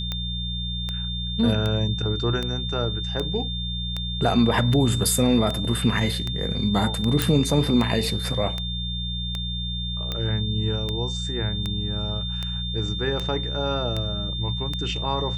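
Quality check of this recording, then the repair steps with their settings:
mains hum 60 Hz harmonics 3 −30 dBFS
scratch tick 78 rpm −14 dBFS
whistle 3,600 Hz −30 dBFS
0:07.22: click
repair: click removal
hum removal 60 Hz, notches 3
notch filter 3,600 Hz, Q 30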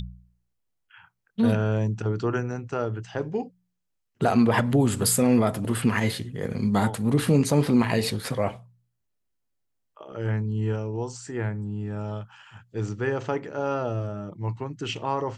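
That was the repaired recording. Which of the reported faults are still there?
none of them is left

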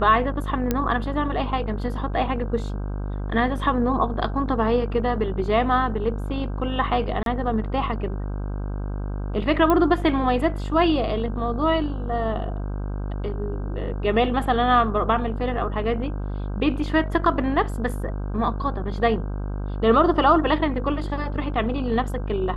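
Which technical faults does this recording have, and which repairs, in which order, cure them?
mains buzz 50 Hz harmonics 32 −28 dBFS
0:00.71: click −8 dBFS
0:07.23–0:07.26: drop-out 32 ms
0:09.70: click −9 dBFS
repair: click removal
hum removal 50 Hz, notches 32
repair the gap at 0:07.23, 32 ms

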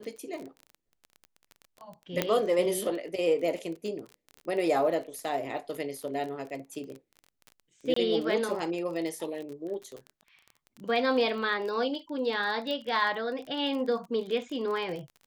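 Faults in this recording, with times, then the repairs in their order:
surface crackle 29 per second −36 dBFS
0:02.22: click −10 dBFS
0:07.94–0:07.96: drop-out 24 ms
0:12.71: click −23 dBFS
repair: click removal
repair the gap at 0:07.94, 24 ms

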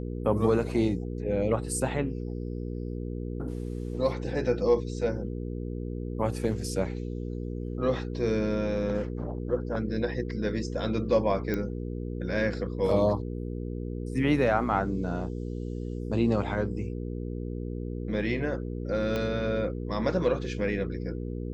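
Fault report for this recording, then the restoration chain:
mains hum 60 Hz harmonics 8 −34 dBFS
0:11.54: click −17 dBFS
0:19.16: click −17 dBFS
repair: click removal
hum removal 60 Hz, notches 8

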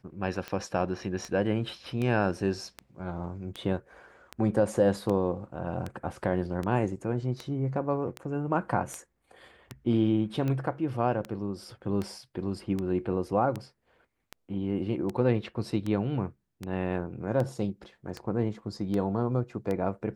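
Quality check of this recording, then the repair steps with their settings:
scratch tick 78 rpm −20 dBFS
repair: click removal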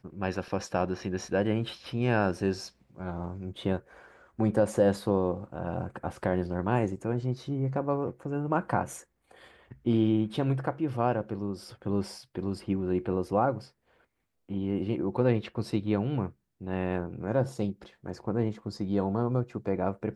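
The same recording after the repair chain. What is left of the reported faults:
none of them is left

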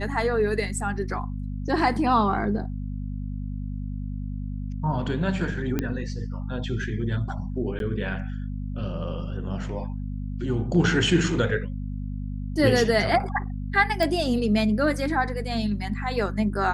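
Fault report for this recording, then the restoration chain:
mains hum 50 Hz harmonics 5 −31 dBFS
0:05.79: click −12 dBFS
0:07.79–0:07.80: drop-out 12 ms
0:14.03: click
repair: click removal
hum removal 50 Hz, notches 5
repair the gap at 0:07.79, 12 ms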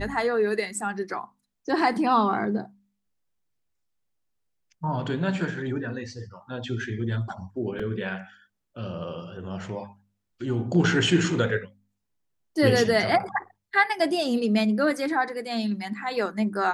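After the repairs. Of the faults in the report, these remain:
none of them is left

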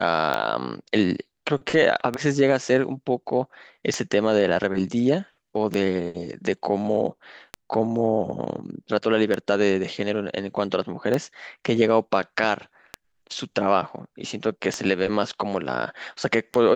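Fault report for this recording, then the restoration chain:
scratch tick 33 1/3 rpm −11 dBFS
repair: click removal

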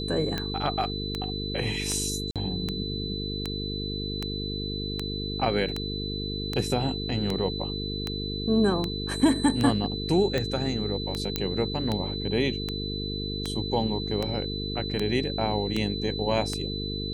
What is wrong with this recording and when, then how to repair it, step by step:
mains buzz 50 Hz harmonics 9 −33 dBFS
scratch tick 78 rpm −14 dBFS
whistle 4,000 Hz −34 dBFS
0:02.31–0:02.36: drop-out 47 ms
0:11.36: click −10 dBFS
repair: click removal
notch filter 4,000 Hz, Q 30
hum removal 50 Hz, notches 9
repair the gap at 0:02.31, 47 ms

